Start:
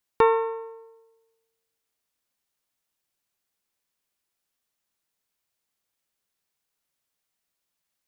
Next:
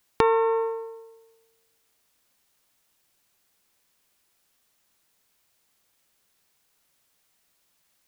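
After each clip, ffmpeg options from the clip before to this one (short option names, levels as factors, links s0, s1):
-af "acompressor=threshold=0.0316:ratio=5,alimiter=level_in=4.47:limit=0.891:release=50:level=0:latency=1,volume=0.891"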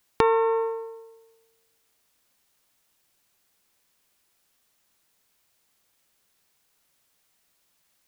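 -af anull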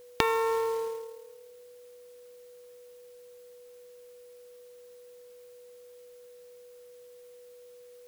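-filter_complex "[0:a]acrossover=split=1900[s0][s1];[s0]acompressor=threshold=0.0251:ratio=5[s2];[s2][s1]amix=inputs=2:normalize=0,aeval=exprs='val(0)+0.002*sin(2*PI*490*n/s)':c=same,acrusher=bits=4:mode=log:mix=0:aa=0.000001,volume=1.78"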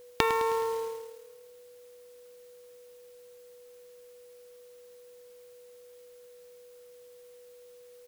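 -af "aecho=1:1:105|210|315|420|525|630:0.224|0.132|0.0779|0.046|0.0271|0.016"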